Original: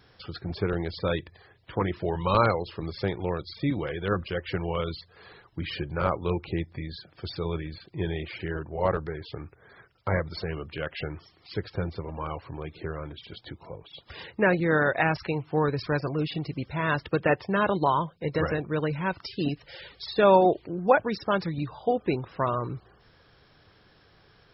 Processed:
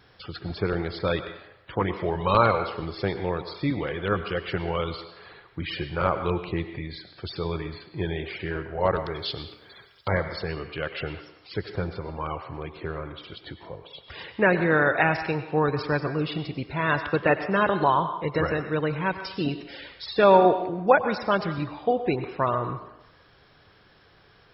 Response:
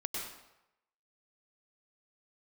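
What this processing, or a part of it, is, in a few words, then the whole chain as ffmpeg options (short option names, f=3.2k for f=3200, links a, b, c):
filtered reverb send: -filter_complex "[0:a]asettb=1/sr,asplit=3[a][b][c];[a]atrim=end=8.964[d];[b]atrim=start=8.96:end=10.09,asetpts=PTS-STARTPTS,afade=t=in:d=0.004:c=qsin,afade=t=out:st=1.126:d=0.004:c=qsin,highshelf=f=2.5k:t=q:w=1.5:g=12[e];[c]atrim=start=10.086[f];[d][e]acrossfade=d=0.004:c1=hsin:c2=qsin[g];[g][f]acrossfade=d=0.004:c1=qsin:c2=hsin,asplit=2[h][i];[i]highpass=f=590:p=1,lowpass=4.5k[j];[1:a]atrim=start_sample=2205[k];[j][k]afir=irnorm=-1:irlink=0,volume=-5.5dB[l];[h][l]amix=inputs=2:normalize=0"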